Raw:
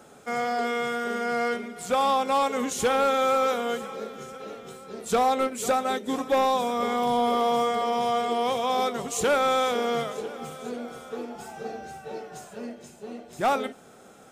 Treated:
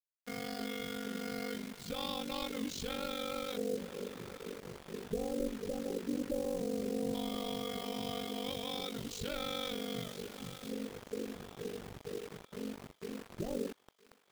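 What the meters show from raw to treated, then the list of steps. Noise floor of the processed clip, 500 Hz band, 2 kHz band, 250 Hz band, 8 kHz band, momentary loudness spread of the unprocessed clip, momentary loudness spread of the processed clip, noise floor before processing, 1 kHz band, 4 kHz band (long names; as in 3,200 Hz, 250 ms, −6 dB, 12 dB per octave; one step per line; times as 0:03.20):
−69 dBFS, −13.0 dB, −14.5 dB, −6.5 dB, −12.5 dB, 16 LU, 9 LU, −51 dBFS, −22.0 dB, −7.0 dB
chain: guitar amp tone stack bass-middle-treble 10-0-1
brickwall limiter −42.5 dBFS, peak gain reduction 8.5 dB
auto-filter low-pass square 0.14 Hz 470–4,300 Hz
bit reduction 10 bits
feedback echo with a high-pass in the loop 972 ms, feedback 57%, high-pass 580 Hz, level −18.5 dB
ring modulation 24 Hz
level +14.5 dB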